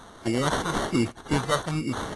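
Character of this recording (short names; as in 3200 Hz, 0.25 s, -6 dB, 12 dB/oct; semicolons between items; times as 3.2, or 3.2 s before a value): phasing stages 2, 1.1 Hz, lowest notch 260–1400 Hz; aliases and images of a low sample rate 2500 Hz, jitter 0%; AAC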